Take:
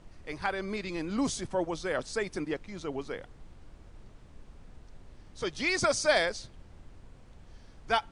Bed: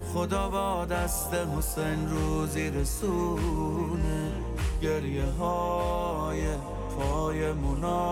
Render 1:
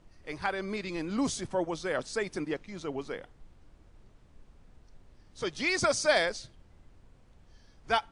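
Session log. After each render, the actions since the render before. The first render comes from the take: noise print and reduce 6 dB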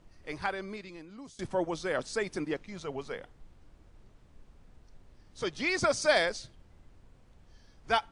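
0.4–1.39 fade out quadratic, to -20 dB; 2.73–3.21 bell 310 Hz -12.5 dB 0.28 oct; 5.49–6.02 high shelf 4200 Hz -5.5 dB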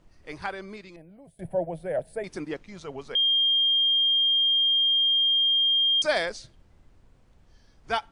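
0.96–2.24 EQ curve 110 Hz 0 dB, 170 Hz +6 dB, 240 Hz -8 dB, 410 Hz -3 dB, 650 Hz +9 dB, 1200 Hz -20 dB, 1600 Hz -7 dB, 2400 Hz -9 dB, 6200 Hz -28 dB, 11000 Hz +8 dB; 3.15–6.02 bleep 3210 Hz -19 dBFS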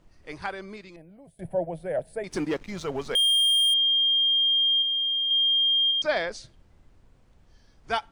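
2.31–3.74 sample leveller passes 2; 4.82–5.31 air absorption 200 m; 5.91–6.32 air absorption 150 m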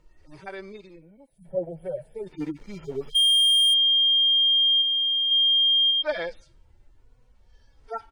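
median-filter separation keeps harmonic; comb 2.2 ms, depth 32%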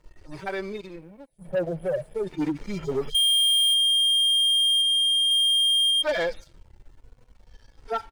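compressor 2:1, threshold -24 dBFS, peak gain reduction 3.5 dB; sample leveller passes 2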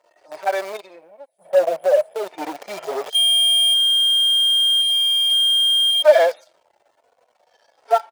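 in parallel at -5.5 dB: bit-crush 5-bit; on the sum: resonant high-pass 650 Hz, resonance Q 4.9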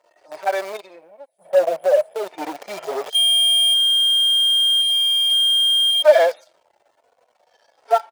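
nothing audible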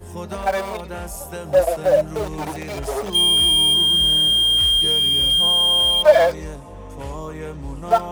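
add bed -2.5 dB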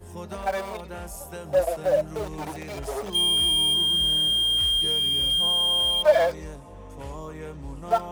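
gain -6 dB

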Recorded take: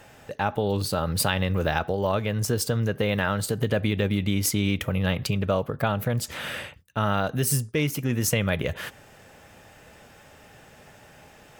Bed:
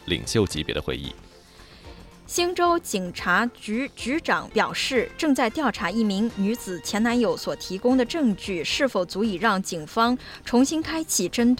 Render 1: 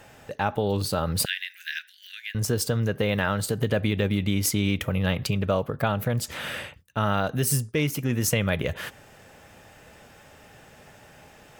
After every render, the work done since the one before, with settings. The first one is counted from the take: 1.25–2.35 steep high-pass 1600 Hz 96 dB/oct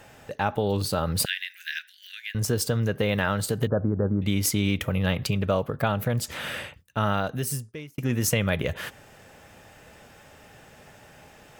3.67–4.22 steep low-pass 1500 Hz 72 dB/oct; 7.06–7.98 fade out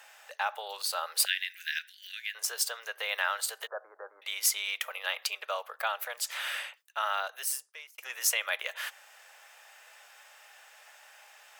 Bessel high-pass 1100 Hz, order 8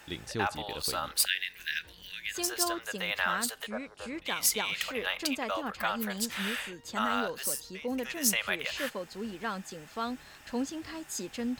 add bed -14 dB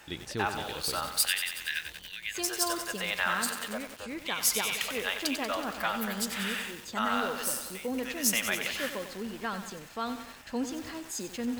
lo-fi delay 93 ms, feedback 80%, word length 7-bit, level -8 dB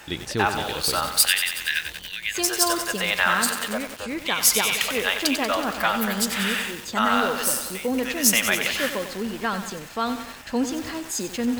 gain +8.5 dB

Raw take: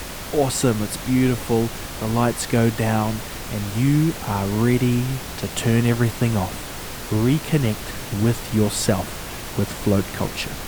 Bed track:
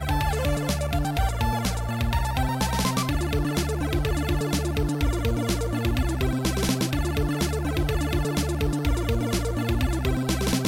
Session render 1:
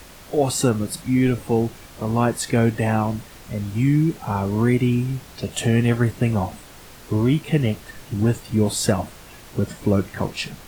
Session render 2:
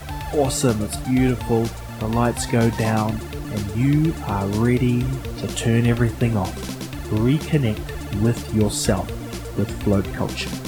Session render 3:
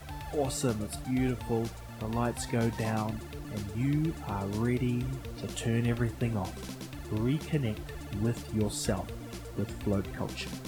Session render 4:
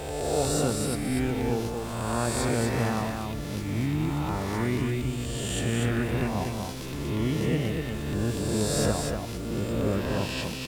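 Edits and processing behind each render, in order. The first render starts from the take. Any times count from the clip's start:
noise print and reduce 11 dB
add bed track -6 dB
gain -11 dB
spectral swells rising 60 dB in 1.69 s; echo 0.242 s -4.5 dB

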